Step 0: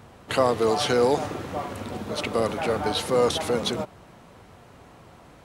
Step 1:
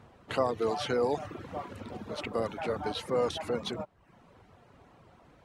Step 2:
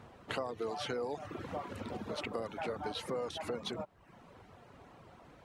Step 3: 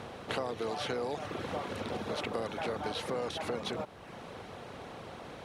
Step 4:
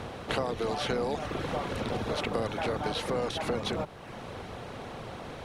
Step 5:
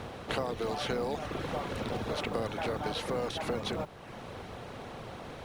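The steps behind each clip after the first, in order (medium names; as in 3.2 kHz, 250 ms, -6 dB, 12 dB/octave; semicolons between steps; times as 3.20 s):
reverb removal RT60 0.65 s; low-pass 3.6 kHz 6 dB/octave; trim -6.5 dB
bass shelf 160 Hz -3 dB; compression 4:1, threshold -38 dBFS, peak gain reduction 13 dB; trim +2 dB
spectral levelling over time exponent 0.6
octave divider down 1 oct, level -2 dB; trim +4 dB
modulation noise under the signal 33 dB; trim -2.5 dB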